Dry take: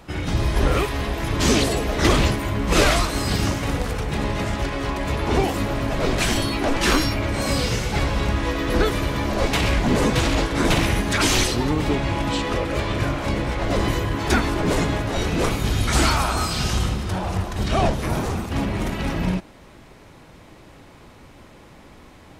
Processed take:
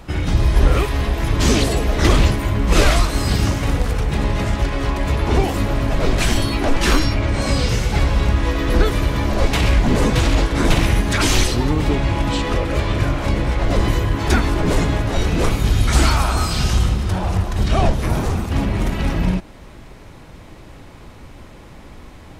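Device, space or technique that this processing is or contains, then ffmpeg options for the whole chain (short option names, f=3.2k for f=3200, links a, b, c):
parallel compression: -filter_complex "[0:a]asettb=1/sr,asplit=3[a][b][c];[a]atrim=end=6.994[d];[b]atrim=start=6.99:end=7.69,asetpts=PTS-STARTPTS,afade=t=in:d=0.004:c=qsin,afade=t=out:st=0.696:d=0.004:c=qsin,lowpass=8.8k[e];[c]atrim=start=7.686[f];[d][e]acrossfade=d=0.004:c1=hsin:c2=qsin[g];[g][f]acrossfade=d=0.004:c1=qsin:c2=hsin,lowshelf=f=87:g=9.5,asplit=2[h][i];[i]acompressor=threshold=-23dB:ratio=6,volume=-3.5dB[j];[h][j]amix=inputs=2:normalize=0,volume=-1dB"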